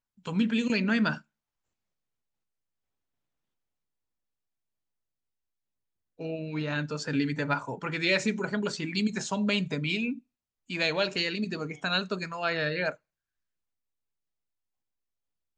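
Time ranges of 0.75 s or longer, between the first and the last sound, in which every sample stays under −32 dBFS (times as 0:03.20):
0:01.15–0:06.21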